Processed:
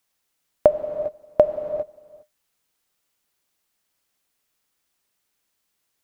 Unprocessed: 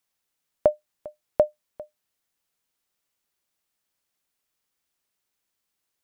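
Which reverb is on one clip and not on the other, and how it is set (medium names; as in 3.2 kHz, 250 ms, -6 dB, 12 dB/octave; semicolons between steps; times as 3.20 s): gated-style reverb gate 440 ms flat, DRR 8.5 dB; trim +5 dB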